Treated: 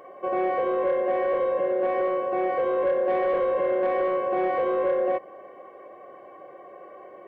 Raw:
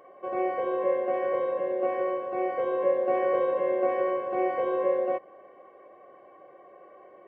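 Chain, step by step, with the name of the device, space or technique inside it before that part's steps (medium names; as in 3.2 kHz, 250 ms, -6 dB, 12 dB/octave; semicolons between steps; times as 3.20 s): soft clipper into limiter (saturation -19.5 dBFS, distortion -19 dB; peak limiter -24.5 dBFS, peak gain reduction 4.5 dB); trim +6.5 dB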